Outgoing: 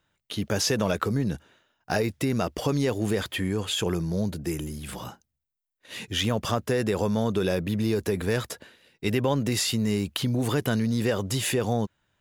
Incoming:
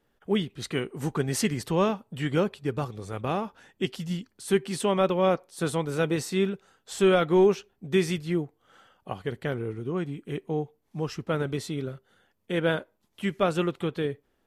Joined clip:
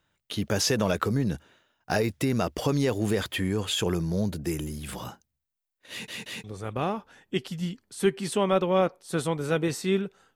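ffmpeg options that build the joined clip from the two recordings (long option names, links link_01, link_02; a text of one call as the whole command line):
ffmpeg -i cue0.wav -i cue1.wav -filter_complex "[0:a]apad=whole_dur=10.35,atrim=end=10.35,asplit=3[link_01][link_02][link_03];[link_01]atrim=end=6.082[link_04];[link_02]atrim=start=5.898:end=6.082[link_05];[link_03]atrim=start=5.898:end=6.082[link_06];[1:a]atrim=start=2.918:end=6.83[link_07];[link_04][link_05]acrossfade=duration=0.004:curve1=hsin:curve2=hsin[link_08];[link_08][link_06]acrossfade=duration=0.004:curve1=hsin:curve2=hsin[link_09];[link_09][link_07]acrossfade=duration=0.004:curve1=hsin:curve2=hsin" out.wav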